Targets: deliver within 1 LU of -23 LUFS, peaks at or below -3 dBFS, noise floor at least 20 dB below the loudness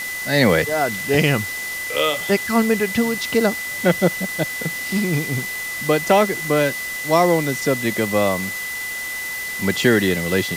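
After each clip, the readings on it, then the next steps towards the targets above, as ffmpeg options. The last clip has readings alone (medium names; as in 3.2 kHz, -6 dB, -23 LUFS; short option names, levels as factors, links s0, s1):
steady tone 2 kHz; tone level -26 dBFS; noise floor -28 dBFS; noise floor target -40 dBFS; loudness -19.5 LUFS; peak level -3.0 dBFS; loudness target -23.0 LUFS
-> -af "bandreject=f=2000:w=30"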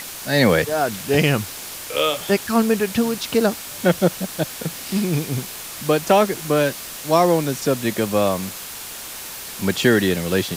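steady tone not found; noise floor -34 dBFS; noise floor target -41 dBFS
-> -af "afftdn=nr=7:nf=-34"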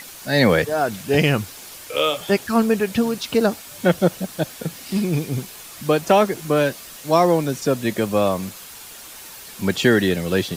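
noise floor -39 dBFS; noise floor target -41 dBFS
-> -af "afftdn=nr=6:nf=-39"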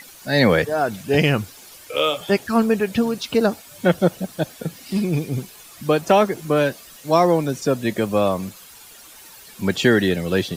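noise floor -44 dBFS; loudness -20.5 LUFS; peak level -3.5 dBFS; loudness target -23.0 LUFS
-> -af "volume=0.75"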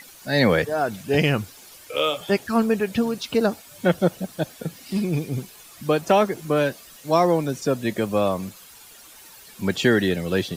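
loudness -23.0 LUFS; peak level -6.0 dBFS; noise floor -47 dBFS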